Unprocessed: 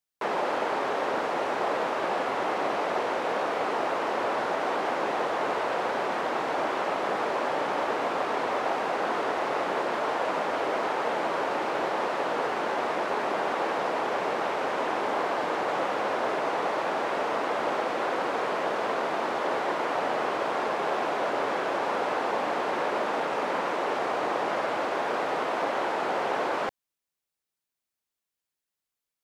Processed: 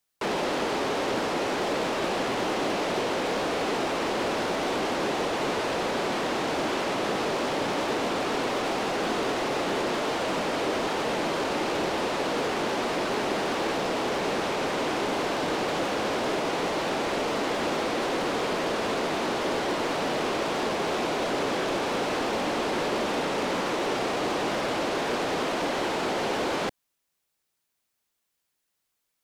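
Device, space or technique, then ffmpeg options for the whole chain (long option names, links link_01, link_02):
one-band saturation: -filter_complex "[0:a]acrossover=split=360|3000[link_01][link_02][link_03];[link_02]asoftclip=type=tanh:threshold=-39dB[link_04];[link_01][link_04][link_03]amix=inputs=3:normalize=0,volume=8.5dB"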